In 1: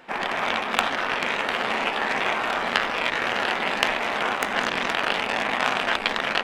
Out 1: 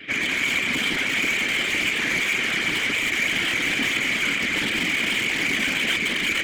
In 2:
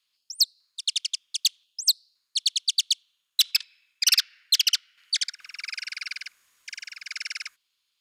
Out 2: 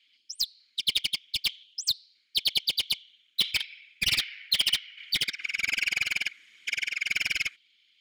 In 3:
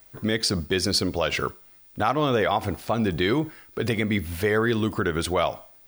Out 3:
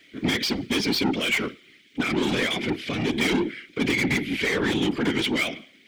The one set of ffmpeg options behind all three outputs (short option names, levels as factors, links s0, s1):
-filter_complex "[0:a]asplit=3[s0][s1][s2];[s0]bandpass=f=270:t=q:w=8,volume=1[s3];[s1]bandpass=f=2290:t=q:w=8,volume=0.501[s4];[s2]bandpass=f=3010:t=q:w=8,volume=0.355[s5];[s3][s4][s5]amix=inputs=3:normalize=0,acontrast=55,asplit=2[s6][s7];[s7]highpass=f=720:p=1,volume=39.8,asoftclip=type=tanh:threshold=0.355[s8];[s6][s8]amix=inputs=2:normalize=0,lowpass=f=6600:p=1,volume=0.501,afftfilt=real='hypot(re,im)*cos(2*PI*random(0))':imag='hypot(re,im)*sin(2*PI*random(1))':win_size=512:overlap=0.75"